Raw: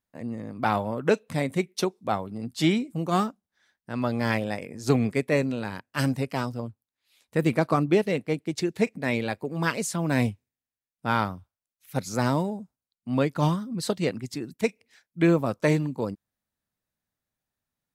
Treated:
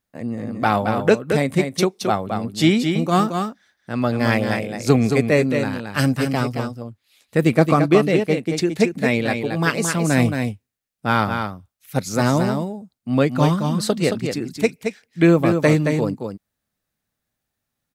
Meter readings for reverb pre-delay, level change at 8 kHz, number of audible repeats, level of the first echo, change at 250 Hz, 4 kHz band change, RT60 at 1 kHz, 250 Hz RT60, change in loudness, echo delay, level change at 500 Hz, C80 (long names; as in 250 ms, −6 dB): no reverb audible, +7.5 dB, 1, −6.0 dB, +7.5 dB, +7.5 dB, no reverb audible, no reverb audible, +7.0 dB, 222 ms, +7.5 dB, no reverb audible